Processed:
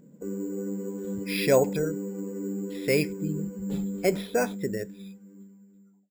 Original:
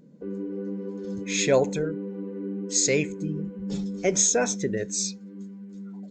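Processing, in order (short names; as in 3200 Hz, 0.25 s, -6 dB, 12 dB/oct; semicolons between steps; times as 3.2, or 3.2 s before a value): ending faded out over 1.96 s; careless resampling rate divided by 6×, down filtered, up hold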